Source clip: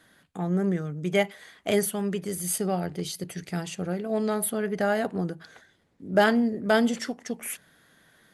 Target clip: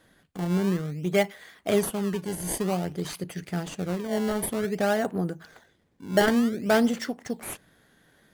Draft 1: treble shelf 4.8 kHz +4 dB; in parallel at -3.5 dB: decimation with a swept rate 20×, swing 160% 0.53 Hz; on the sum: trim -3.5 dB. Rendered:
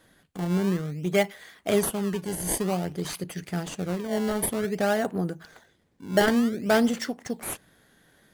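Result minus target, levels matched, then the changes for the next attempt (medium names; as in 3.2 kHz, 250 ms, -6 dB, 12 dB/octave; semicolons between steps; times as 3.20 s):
8 kHz band +2.5 dB
remove: treble shelf 4.8 kHz +4 dB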